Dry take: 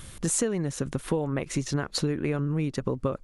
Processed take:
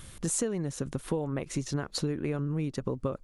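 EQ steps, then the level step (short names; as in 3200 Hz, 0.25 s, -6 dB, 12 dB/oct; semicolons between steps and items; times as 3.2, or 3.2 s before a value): dynamic EQ 2000 Hz, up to -3 dB, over -47 dBFS, Q 0.95; -3.5 dB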